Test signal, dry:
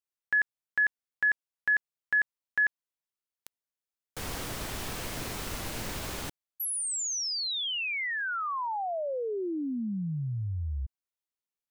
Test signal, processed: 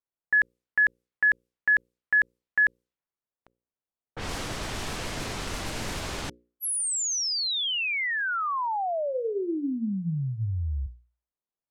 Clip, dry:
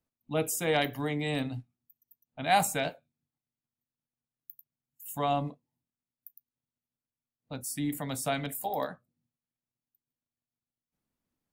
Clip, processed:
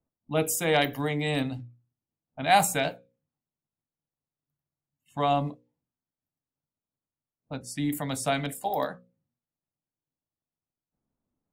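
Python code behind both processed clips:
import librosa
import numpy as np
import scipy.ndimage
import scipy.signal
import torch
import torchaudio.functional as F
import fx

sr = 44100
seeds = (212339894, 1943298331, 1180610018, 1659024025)

y = fx.hum_notches(x, sr, base_hz=60, count=9)
y = fx.env_lowpass(y, sr, base_hz=970.0, full_db=-30.0)
y = y * librosa.db_to_amplitude(4.0)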